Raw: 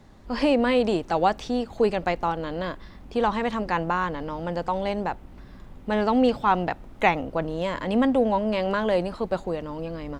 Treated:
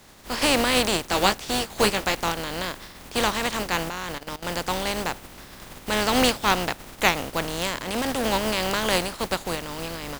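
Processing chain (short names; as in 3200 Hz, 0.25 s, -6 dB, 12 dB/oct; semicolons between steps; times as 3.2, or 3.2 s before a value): spectral contrast lowered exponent 0.43; 1.07–2.15 doubler 15 ms -6.5 dB; 3.89–4.45 level quantiser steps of 16 dB; 7.82–8.24 tube stage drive 21 dB, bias 0.65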